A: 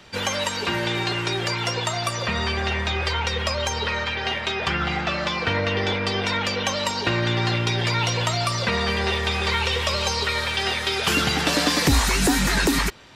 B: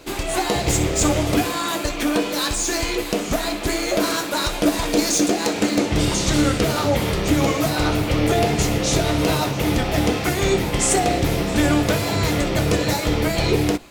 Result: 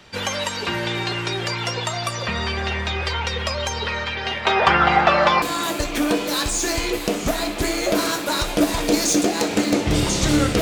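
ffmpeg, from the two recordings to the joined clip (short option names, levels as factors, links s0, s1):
-filter_complex "[0:a]asettb=1/sr,asplit=3[s0][s1][s2];[s0]atrim=end=4.454[s3];[s1]atrim=start=4.45:end=5.42,asetpts=PTS-STARTPTS,afade=t=in:d=0.004:c=qsin,afade=t=out:st=0.966:d=0.004:c=qsin,equalizer=f=840:t=o:w=2.4:g=14[s4];[s2]atrim=start=5.416[s5];[s3][s4]acrossfade=d=0.004:c1=hsin:c2=qsin[s6];[s6][s5]acrossfade=d=0.004:c1=qsin:c2=hsin,apad=whole_dur=10.61,atrim=end=10.61,atrim=end=5.422[s7];[1:a]atrim=start=1.468:end=6.66[s8];[s7][s8]acrossfade=d=0.004:c1=hsin:c2=hsin"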